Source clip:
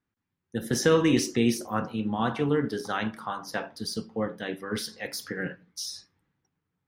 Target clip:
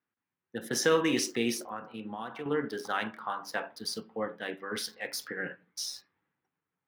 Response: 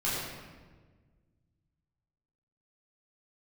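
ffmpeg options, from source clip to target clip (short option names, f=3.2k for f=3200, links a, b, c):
-filter_complex "[0:a]acrossover=split=3400[a][b];[a]highpass=f=550:p=1[c];[b]aeval=exprs='sgn(val(0))*max(abs(val(0))-0.00299,0)':c=same[d];[c][d]amix=inputs=2:normalize=0,asettb=1/sr,asplit=3[e][f][g];[e]atrim=end=1.654[h];[f]atrim=start=1.65:end=2.46,asetpts=PTS-STARTPTS,afade=t=in:d=0.004:c=qsin,afade=t=out:st=0.806:d=0.004:c=qsin,acompressor=threshold=-36dB:ratio=6[i];[g]atrim=start=2.456[j];[h][i]acrossfade=d=0.004:c1=hsin:c2=qsin[k];[k][j]acrossfade=d=0.004:c1=qsin:c2=hsin"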